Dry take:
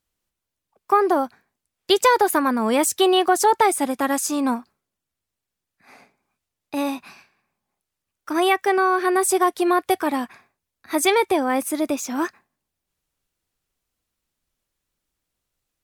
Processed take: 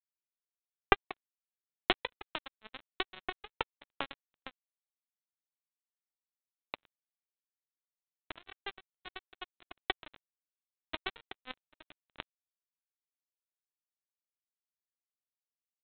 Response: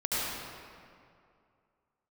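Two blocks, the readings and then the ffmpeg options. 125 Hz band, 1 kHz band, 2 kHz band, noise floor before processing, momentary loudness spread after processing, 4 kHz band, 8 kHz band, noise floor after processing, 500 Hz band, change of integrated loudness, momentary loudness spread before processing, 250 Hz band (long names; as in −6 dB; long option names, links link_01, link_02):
can't be measured, −21.5 dB, −14.0 dB, −84 dBFS, 18 LU, −13.5 dB, below −40 dB, below −85 dBFS, −24.5 dB, −19.0 dB, 10 LU, −27.0 dB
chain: -af "acompressor=threshold=-25dB:ratio=12,aresample=8000,acrusher=bits=2:mix=0:aa=0.5,aresample=44100,volume=8.5dB"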